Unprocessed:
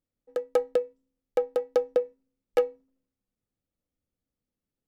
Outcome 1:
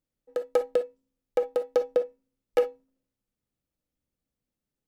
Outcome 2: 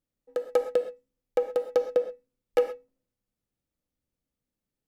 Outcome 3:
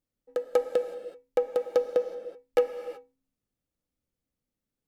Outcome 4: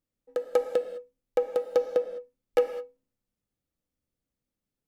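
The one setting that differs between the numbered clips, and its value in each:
non-linear reverb, gate: 80, 150, 400, 230 ms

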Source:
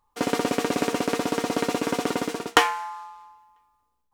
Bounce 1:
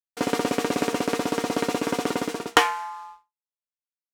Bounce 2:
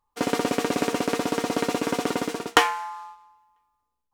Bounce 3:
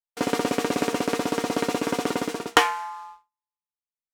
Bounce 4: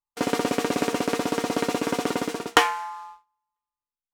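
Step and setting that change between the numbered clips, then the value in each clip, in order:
gate, range: -57, -6, -41, -27 dB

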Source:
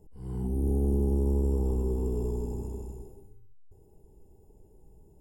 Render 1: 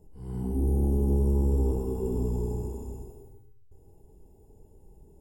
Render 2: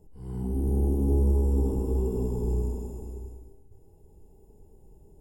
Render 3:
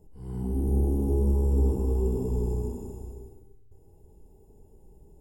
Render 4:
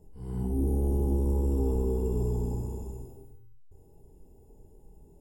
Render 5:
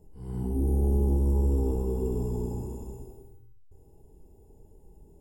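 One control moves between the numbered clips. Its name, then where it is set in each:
non-linear reverb, gate: 200, 490, 330, 90, 130 ms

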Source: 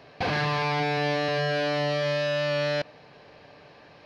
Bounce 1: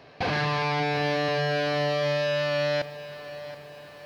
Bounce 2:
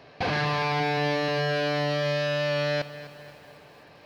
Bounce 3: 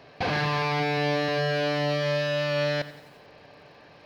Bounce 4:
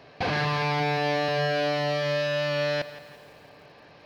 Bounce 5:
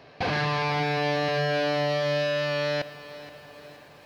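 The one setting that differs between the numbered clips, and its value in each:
lo-fi delay, time: 726, 253, 89, 169, 474 ms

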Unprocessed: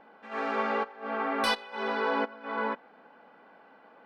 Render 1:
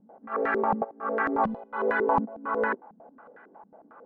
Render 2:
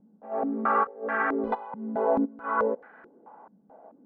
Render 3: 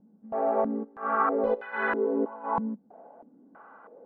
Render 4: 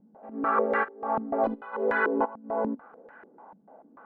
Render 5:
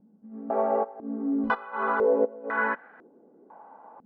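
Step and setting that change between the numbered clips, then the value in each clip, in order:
stepped low-pass, rate: 11, 4.6, 3.1, 6.8, 2 Hz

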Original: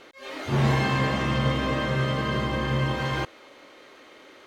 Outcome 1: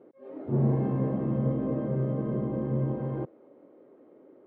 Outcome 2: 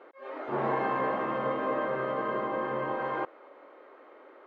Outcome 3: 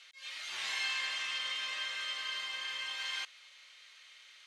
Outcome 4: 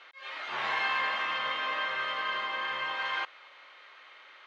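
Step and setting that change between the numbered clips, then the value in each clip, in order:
Butterworth band-pass, frequency: 260, 690, 5200, 1900 Hz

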